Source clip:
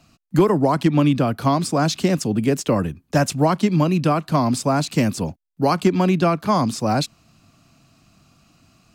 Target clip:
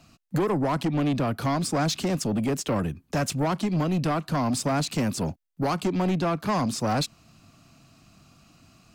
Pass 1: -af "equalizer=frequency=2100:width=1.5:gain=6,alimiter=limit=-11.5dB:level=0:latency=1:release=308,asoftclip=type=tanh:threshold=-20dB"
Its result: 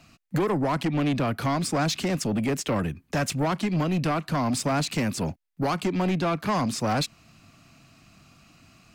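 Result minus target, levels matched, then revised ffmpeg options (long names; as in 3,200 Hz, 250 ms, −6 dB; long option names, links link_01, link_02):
2,000 Hz band +2.5 dB
-af "alimiter=limit=-11.5dB:level=0:latency=1:release=308,asoftclip=type=tanh:threshold=-20dB"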